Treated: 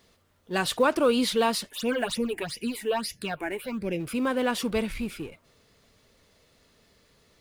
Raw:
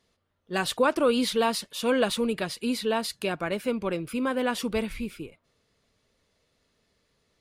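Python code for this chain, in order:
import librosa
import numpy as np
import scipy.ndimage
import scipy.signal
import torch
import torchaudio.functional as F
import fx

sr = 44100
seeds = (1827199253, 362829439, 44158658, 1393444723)

y = fx.law_mismatch(x, sr, coded='mu')
y = fx.phaser_stages(y, sr, stages=8, low_hz=150.0, high_hz=1300.0, hz=fx.line((1.69, 3.9), (3.99, 0.89)), feedback_pct=25, at=(1.69, 3.99), fade=0.02)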